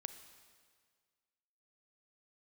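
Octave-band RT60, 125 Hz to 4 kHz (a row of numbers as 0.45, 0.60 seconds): 1.9, 1.8, 1.8, 1.8, 1.7, 1.7 seconds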